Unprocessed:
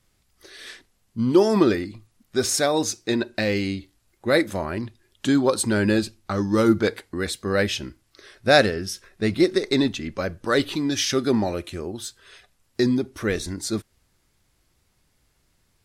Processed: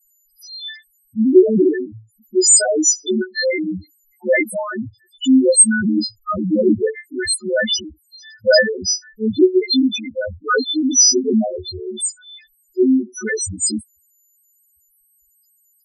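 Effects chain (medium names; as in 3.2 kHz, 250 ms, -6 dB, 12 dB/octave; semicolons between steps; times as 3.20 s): partials quantised in pitch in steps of 3 st; loudest bins only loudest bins 2; trim +9 dB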